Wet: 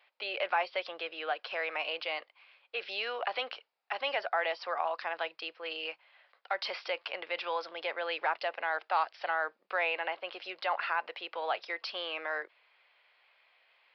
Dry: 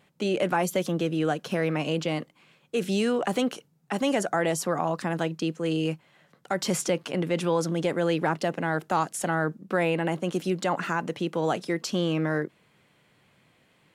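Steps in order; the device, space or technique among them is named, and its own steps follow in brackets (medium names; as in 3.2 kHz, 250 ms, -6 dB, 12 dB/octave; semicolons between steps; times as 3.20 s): musical greeting card (resampled via 11.025 kHz; high-pass 630 Hz 24 dB/octave; peaking EQ 2.4 kHz +5 dB 0.51 oct); trim -3 dB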